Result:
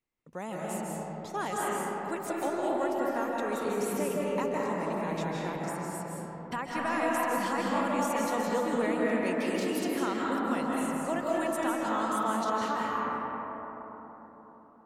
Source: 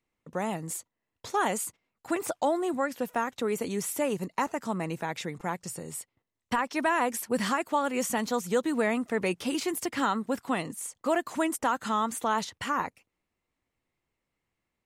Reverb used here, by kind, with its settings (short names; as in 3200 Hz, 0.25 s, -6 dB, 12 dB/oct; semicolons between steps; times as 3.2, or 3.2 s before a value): digital reverb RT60 4.5 s, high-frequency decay 0.3×, pre-delay 0.12 s, DRR -5 dB; gain -7.5 dB